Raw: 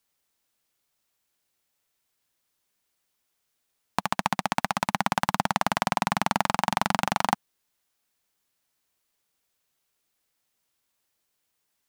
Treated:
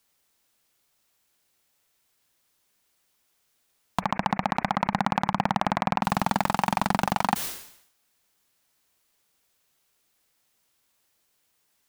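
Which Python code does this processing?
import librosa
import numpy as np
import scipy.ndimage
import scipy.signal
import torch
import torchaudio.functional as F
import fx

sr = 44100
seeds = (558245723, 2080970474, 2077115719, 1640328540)

y = fx.steep_lowpass(x, sr, hz=2400.0, slope=96, at=(3.99, 6.02), fade=0.02)
y = 10.0 ** (-18.0 / 20.0) * np.tanh(y / 10.0 ** (-18.0 / 20.0))
y = fx.sustainer(y, sr, db_per_s=84.0)
y = y * librosa.db_to_amplitude(6.0)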